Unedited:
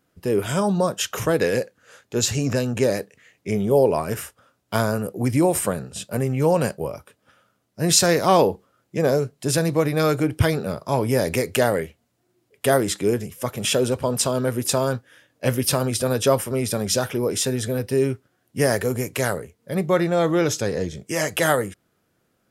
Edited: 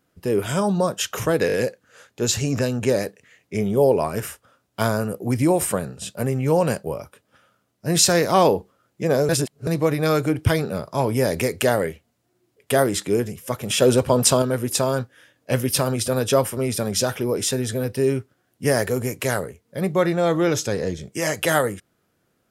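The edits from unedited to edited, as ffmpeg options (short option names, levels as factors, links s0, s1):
-filter_complex "[0:a]asplit=8[s0][s1][s2][s3][s4][s5][s6][s7];[s0]atrim=end=1.492[s8];[s1]atrim=start=1.468:end=1.492[s9];[s2]atrim=start=1.468:end=1.492[s10];[s3]atrim=start=1.468:end=9.232[s11];[s4]atrim=start=9.228:end=9.612,asetpts=PTS-STARTPTS,areverse[s12];[s5]atrim=start=9.608:end=13.762[s13];[s6]atrim=start=13.758:end=14.362,asetpts=PTS-STARTPTS,volume=1.78[s14];[s7]atrim=start=14.358[s15];[s8][s9]acrossfade=d=0.004:c1=hsin:c2=hsin[s16];[s16][s10]acrossfade=d=0.004:c1=hsin:c2=hsin[s17];[s17][s11]acrossfade=d=0.004:c1=hsin:c2=hsin[s18];[s18][s12]acrossfade=d=0.004:c1=hsin:c2=hsin[s19];[s19][s13]acrossfade=d=0.004:c1=hsin:c2=hsin[s20];[s20][s14]acrossfade=d=0.004:c1=hsin:c2=hsin[s21];[s21][s15]acrossfade=d=0.004:c1=hsin:c2=hsin"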